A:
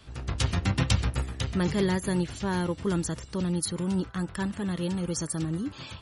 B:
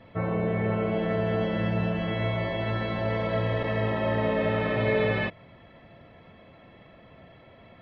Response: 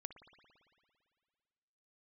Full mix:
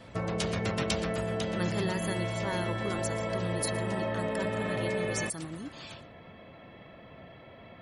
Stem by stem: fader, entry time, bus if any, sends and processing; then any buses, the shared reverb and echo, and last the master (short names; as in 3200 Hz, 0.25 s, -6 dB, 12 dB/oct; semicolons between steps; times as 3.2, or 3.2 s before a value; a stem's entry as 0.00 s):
-3.0 dB, 0.00 s, no send, echo send -18 dB, low shelf 330 Hz -9.5 dB
+2.0 dB, 0.00 s, no send, no echo send, compressor 4:1, threshold -32 dBFS, peak gain reduction 10 dB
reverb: off
echo: echo 0.117 s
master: low shelf 65 Hz -5.5 dB